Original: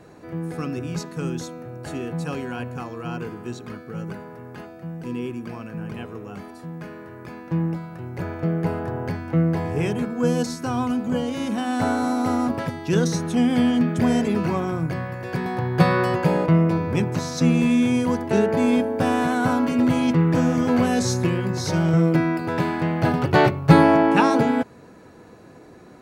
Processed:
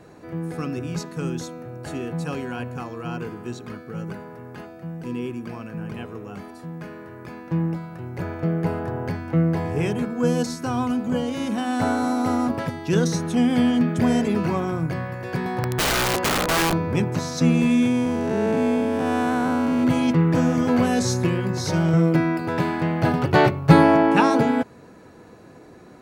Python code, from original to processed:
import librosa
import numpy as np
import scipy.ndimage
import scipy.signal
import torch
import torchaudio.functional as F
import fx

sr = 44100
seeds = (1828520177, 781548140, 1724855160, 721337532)

y = fx.overflow_wrap(x, sr, gain_db=16.0, at=(15.63, 16.73))
y = fx.spec_blur(y, sr, span_ms=291.0, at=(17.87, 19.83), fade=0.02)